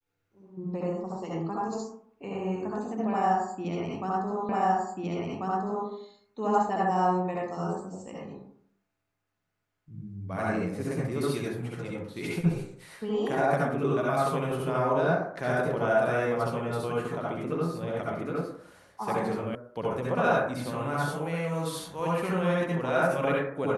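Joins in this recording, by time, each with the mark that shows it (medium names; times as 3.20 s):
4.49 s: repeat of the last 1.39 s
19.55 s: sound stops dead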